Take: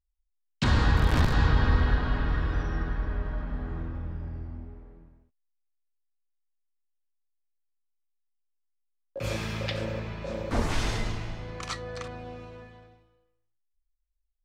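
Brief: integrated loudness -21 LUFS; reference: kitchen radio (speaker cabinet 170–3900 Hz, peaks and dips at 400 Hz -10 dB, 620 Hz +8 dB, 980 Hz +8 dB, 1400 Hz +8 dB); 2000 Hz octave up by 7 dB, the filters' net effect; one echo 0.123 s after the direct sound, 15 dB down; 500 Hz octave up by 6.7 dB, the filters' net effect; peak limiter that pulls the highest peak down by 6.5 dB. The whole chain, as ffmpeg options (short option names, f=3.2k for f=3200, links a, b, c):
-af "equalizer=f=500:t=o:g=5,equalizer=f=2k:t=o:g=3.5,alimiter=limit=-16.5dB:level=0:latency=1,highpass=170,equalizer=f=400:t=q:w=4:g=-10,equalizer=f=620:t=q:w=4:g=8,equalizer=f=980:t=q:w=4:g=8,equalizer=f=1.4k:t=q:w=4:g=8,lowpass=f=3.9k:w=0.5412,lowpass=f=3.9k:w=1.3066,aecho=1:1:123:0.178,volume=8.5dB"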